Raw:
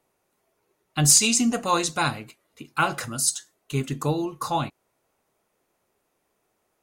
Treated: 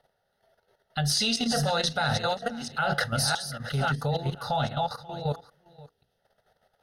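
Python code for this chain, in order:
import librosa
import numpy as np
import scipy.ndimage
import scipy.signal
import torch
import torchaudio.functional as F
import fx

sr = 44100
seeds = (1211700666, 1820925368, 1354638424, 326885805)

p1 = fx.reverse_delay(x, sr, ms=670, wet_db=-8.5)
p2 = fx.air_absorb(p1, sr, metres=50.0)
p3 = fx.over_compress(p2, sr, threshold_db=-30.0, ratio=-1.0)
p4 = p2 + (p3 * librosa.db_to_amplitude(-2.5))
p5 = fx.fixed_phaser(p4, sr, hz=1600.0, stages=8)
p6 = fx.spec_box(p5, sr, start_s=5.86, length_s=0.32, low_hz=500.0, high_hz=2300.0, gain_db=-7)
p7 = fx.hum_notches(p6, sr, base_hz=60, count=8)
p8 = p7 + 10.0 ** (-19.0 / 20.0) * np.pad(p7, (int(534 * sr / 1000.0), 0))[:len(p7)]
p9 = fx.level_steps(p8, sr, step_db=10)
y = p9 * librosa.db_to_amplitude(4.5)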